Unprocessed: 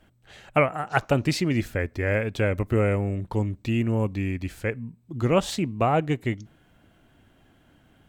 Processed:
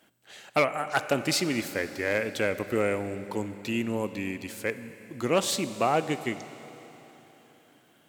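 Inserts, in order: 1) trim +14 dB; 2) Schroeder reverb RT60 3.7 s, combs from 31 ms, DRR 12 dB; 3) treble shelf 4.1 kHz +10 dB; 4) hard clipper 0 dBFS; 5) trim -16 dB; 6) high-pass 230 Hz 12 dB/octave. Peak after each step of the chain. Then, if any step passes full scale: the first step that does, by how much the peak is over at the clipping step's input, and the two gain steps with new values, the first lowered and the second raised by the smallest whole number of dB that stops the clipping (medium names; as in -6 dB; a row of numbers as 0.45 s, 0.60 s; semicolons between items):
+7.5 dBFS, +8.0 dBFS, +9.5 dBFS, 0.0 dBFS, -16.0 dBFS, -10.0 dBFS; step 1, 9.5 dB; step 1 +4 dB, step 5 -6 dB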